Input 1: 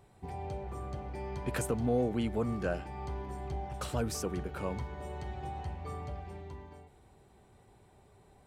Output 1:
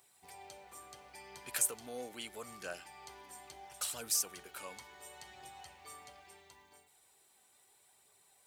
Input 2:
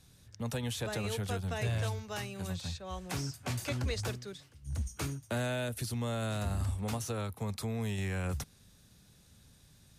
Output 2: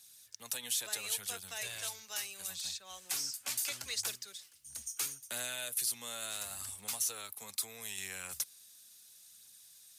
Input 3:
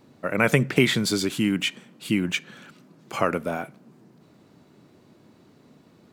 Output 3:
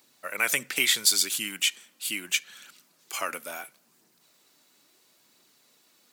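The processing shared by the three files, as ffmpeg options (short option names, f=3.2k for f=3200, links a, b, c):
-af "aderivative,aphaser=in_gain=1:out_gain=1:delay=4.1:decay=0.27:speed=0.74:type=triangular,volume=8.5dB"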